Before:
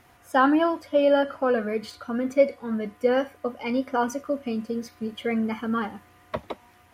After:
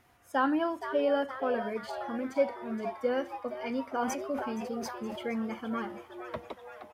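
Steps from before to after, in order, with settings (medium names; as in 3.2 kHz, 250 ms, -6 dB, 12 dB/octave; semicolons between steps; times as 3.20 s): frequency-shifting echo 470 ms, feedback 58%, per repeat +130 Hz, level -10.5 dB; 3.92–5.36 s: decay stretcher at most 41 dB/s; trim -8 dB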